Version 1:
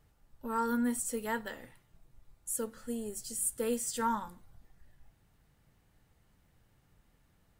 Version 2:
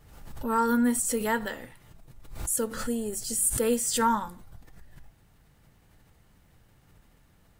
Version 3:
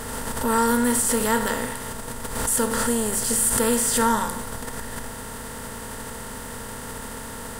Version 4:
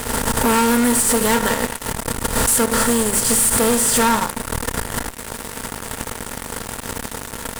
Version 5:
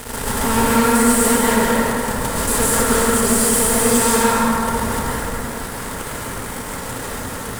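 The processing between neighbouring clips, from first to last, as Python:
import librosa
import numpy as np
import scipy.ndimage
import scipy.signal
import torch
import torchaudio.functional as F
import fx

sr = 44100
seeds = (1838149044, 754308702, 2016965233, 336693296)

y1 = fx.pre_swell(x, sr, db_per_s=59.0)
y1 = F.gain(torch.from_numpy(y1), 7.0).numpy()
y2 = fx.bin_compress(y1, sr, power=0.4)
y2 = fx.high_shelf(y2, sr, hz=11000.0, db=3.0)
y3 = fx.transient(y2, sr, attack_db=11, sustain_db=-9)
y3 = fx.fuzz(y3, sr, gain_db=26.0, gate_db=-33.0)
y4 = fx.rev_plate(y3, sr, seeds[0], rt60_s=3.2, hf_ratio=0.4, predelay_ms=120, drr_db=-7.5)
y4 = F.gain(torch.from_numpy(y4), -6.0).numpy()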